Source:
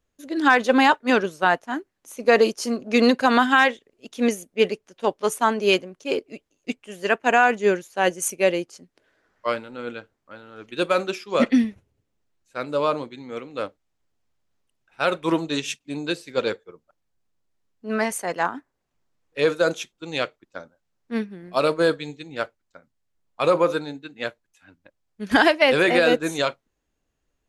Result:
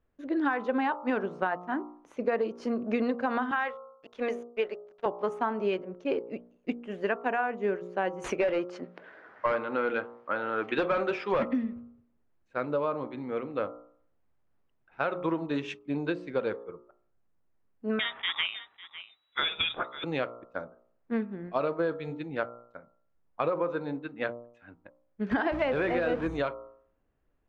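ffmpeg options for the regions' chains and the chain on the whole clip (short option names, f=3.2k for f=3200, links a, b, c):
-filter_complex "[0:a]asettb=1/sr,asplit=3[a][b][c];[a]atrim=end=3.514[d];[b]atrim=start=3.51:end=5.06,asetpts=PTS-STARTPTS,afade=t=in:d=0.004:c=qsin,afade=t=out:st=1.546:d=0.004:c=qsin,highpass=500,aeval=exprs='sgn(val(0))*max(abs(val(0))-0.00398,0)':c=same[e];[c]atrim=start=5.056[f];[d][e]acrossfade=d=0.004:c1=hsin:c2=qsin[g];[g][f]acrossfade=d=0.004:c1=qsin:c2=hsin,asettb=1/sr,asplit=3[h][i][j];[h]atrim=end=8.244[k];[i]atrim=start=8.24:end=11.43,asetpts=PTS-STARTPTS,afade=t=in:d=0.004:c=qsin,afade=t=out:st=3.186:d=0.004:c=qsin,highpass=56,asplit=2[l][m];[m]highpass=f=720:p=1,volume=23dB,asoftclip=type=tanh:threshold=-6dB[n];[l][n]amix=inputs=2:normalize=0,lowpass=f=4.5k:p=1,volume=-6dB[o];[j]atrim=start=11.426[p];[k][o]acrossfade=d=0.004:c1=hsin:c2=qsin[q];[q][p]acrossfade=d=0.004:c1=qsin:c2=hsin,asettb=1/sr,asplit=3[r][s][t];[r]atrim=end=17.994[u];[s]atrim=start=17.99:end=20.04,asetpts=PTS-STARTPTS,afade=t=in:d=0.004:c=qsin,afade=t=out:st=2.046:d=0.004:c=qsin,acontrast=68,lowpass=f=3.3k:t=q:w=0.5098,lowpass=f=3.3k:t=q:w=0.6013,lowpass=f=3.3k:t=q:w=0.9,lowpass=f=3.3k:t=q:w=2.563,afreqshift=-3900,aecho=1:1:550:0.1,atrim=end_sample=90405[v];[t]atrim=start=20.036[w];[u][v]acrossfade=d=0.004:c1=hsin:c2=qsin[x];[x][w]acrossfade=d=0.004:c1=qsin:c2=hsin,asettb=1/sr,asplit=3[y][z][aa];[y]atrim=end=25.524[ab];[z]atrim=start=25.52:end=26.27,asetpts=PTS-STARTPTS,afade=t=in:d=0.004:c=qsin,afade=t=out:st=0.746:d=0.004:c=qsin,aeval=exprs='val(0)+0.5*0.0794*sgn(val(0))':c=same,aeval=exprs='val(0)+0.0447*(sin(2*PI*60*n/s)+sin(2*PI*2*60*n/s)/2+sin(2*PI*3*60*n/s)/3+sin(2*PI*4*60*n/s)/4+sin(2*PI*5*60*n/s)/5)':c=same[ac];[aa]atrim=start=26.266[ad];[ab][ac]acrossfade=d=0.004:c1=hsin:c2=qsin[ae];[ae][ad]acrossfade=d=0.004:c1=qsin:c2=hsin,lowpass=1.7k,bandreject=f=59.45:t=h:w=4,bandreject=f=118.9:t=h:w=4,bandreject=f=178.35:t=h:w=4,bandreject=f=237.8:t=h:w=4,bandreject=f=297.25:t=h:w=4,bandreject=f=356.7:t=h:w=4,bandreject=f=416.15:t=h:w=4,bandreject=f=475.6:t=h:w=4,bandreject=f=535.05:t=h:w=4,bandreject=f=594.5:t=h:w=4,bandreject=f=653.95:t=h:w=4,bandreject=f=713.4:t=h:w=4,bandreject=f=772.85:t=h:w=4,bandreject=f=832.3:t=h:w=4,bandreject=f=891.75:t=h:w=4,bandreject=f=951.2:t=h:w=4,bandreject=f=1.01065k:t=h:w=4,bandreject=f=1.0701k:t=h:w=4,bandreject=f=1.12955k:t=h:w=4,bandreject=f=1.189k:t=h:w=4,bandreject=f=1.24845k:t=h:w=4,bandreject=f=1.3079k:t=h:w=4,bandreject=f=1.36735k:t=h:w=4,acompressor=threshold=-28dB:ratio=6,volume=2dB"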